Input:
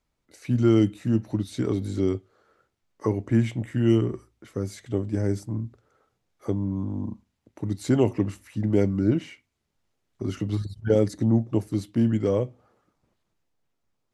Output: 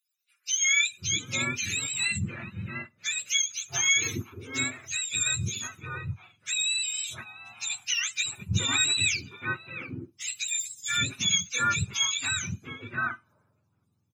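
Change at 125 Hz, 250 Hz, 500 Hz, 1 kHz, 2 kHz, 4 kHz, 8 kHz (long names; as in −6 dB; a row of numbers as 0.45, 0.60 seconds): −10.0, −17.0, −20.5, +5.0, +17.0, +19.0, +23.0 decibels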